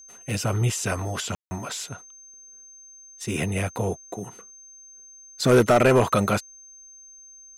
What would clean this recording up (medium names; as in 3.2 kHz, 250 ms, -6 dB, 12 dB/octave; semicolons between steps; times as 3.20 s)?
clip repair -10.5 dBFS; band-stop 6.3 kHz, Q 30; room tone fill 1.35–1.51 s